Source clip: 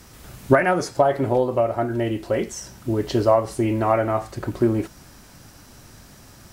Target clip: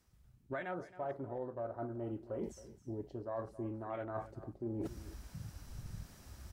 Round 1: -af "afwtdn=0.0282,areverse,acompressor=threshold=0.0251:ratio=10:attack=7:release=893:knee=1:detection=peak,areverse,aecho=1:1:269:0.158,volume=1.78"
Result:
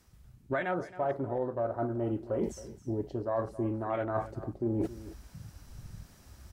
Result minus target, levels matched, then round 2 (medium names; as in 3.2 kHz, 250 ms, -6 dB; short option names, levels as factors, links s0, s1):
compression: peak gain reduction -9 dB
-af "afwtdn=0.0282,areverse,acompressor=threshold=0.00794:ratio=10:attack=7:release=893:knee=1:detection=peak,areverse,aecho=1:1:269:0.158,volume=1.78"